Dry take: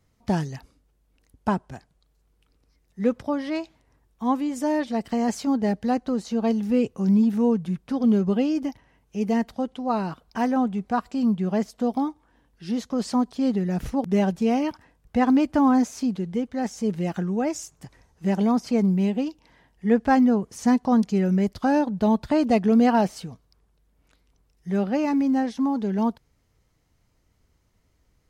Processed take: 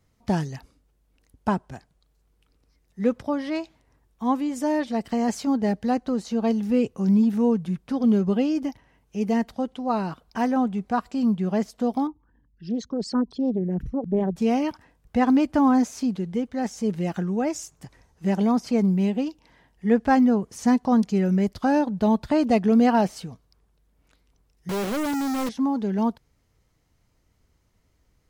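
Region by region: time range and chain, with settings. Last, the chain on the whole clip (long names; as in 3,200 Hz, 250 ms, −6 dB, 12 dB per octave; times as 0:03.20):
0:12.07–0:14.36: spectral envelope exaggerated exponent 2 + parametric band 660 Hz −10 dB 0.71 octaves + highs frequency-modulated by the lows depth 0.22 ms
0:24.69–0:25.49: resonant band-pass 450 Hz, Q 1.2 + log-companded quantiser 2 bits
whole clip: no processing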